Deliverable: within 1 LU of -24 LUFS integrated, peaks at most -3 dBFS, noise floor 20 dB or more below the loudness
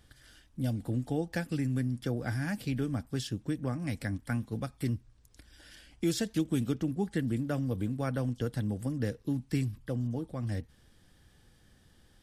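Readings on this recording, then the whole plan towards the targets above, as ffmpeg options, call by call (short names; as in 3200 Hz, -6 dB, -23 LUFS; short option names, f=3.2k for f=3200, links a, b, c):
loudness -33.5 LUFS; peak -18.0 dBFS; loudness target -24.0 LUFS
-> -af "volume=9.5dB"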